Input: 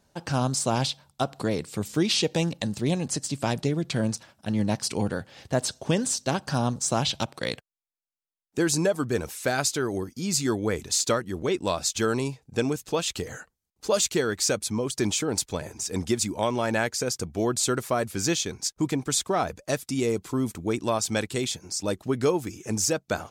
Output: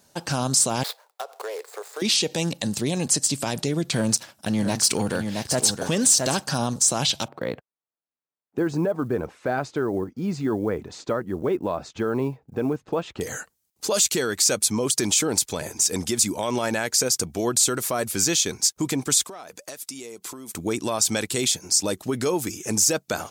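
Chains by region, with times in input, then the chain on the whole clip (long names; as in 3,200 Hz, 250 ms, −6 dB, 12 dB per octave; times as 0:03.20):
0:00.83–0:02.02: running median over 15 samples + elliptic high-pass filter 430 Hz, stop band 50 dB + downward compressor 5 to 1, threshold −34 dBFS
0:03.93–0:06.44: leveller curve on the samples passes 1 + single-tap delay 670 ms −10 dB
0:07.28–0:13.21: low-pass filter 1,200 Hz + floating-point word with a short mantissa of 6 bits
0:19.24–0:20.54: parametric band 80 Hz −14.5 dB 2.3 octaves + downward compressor 12 to 1, threshold −40 dBFS
whole clip: brickwall limiter −20 dBFS; high-pass filter 140 Hz 6 dB per octave; high-shelf EQ 5,000 Hz +10 dB; level +5 dB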